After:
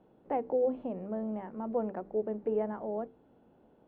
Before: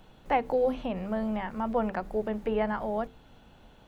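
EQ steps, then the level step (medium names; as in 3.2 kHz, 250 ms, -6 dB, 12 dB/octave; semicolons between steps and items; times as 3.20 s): band-pass filter 370 Hz, Q 1.3; distance through air 98 m; 0.0 dB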